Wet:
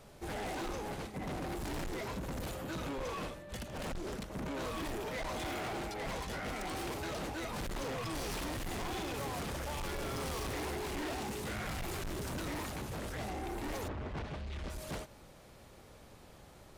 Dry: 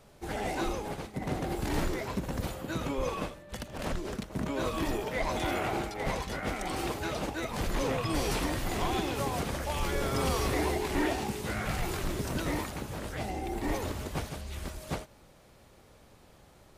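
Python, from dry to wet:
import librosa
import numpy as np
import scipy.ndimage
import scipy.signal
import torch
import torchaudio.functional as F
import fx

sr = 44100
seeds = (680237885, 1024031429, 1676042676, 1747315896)

y = fx.lowpass(x, sr, hz=fx.line((13.87, 1800.0), (14.69, 4700.0)), slope=12, at=(13.87, 14.69), fade=0.02)
y = 10.0 ** (-38.0 / 20.0) * np.tanh(y / 10.0 ** (-38.0 / 20.0))
y = F.gain(torch.from_numpy(y), 1.5).numpy()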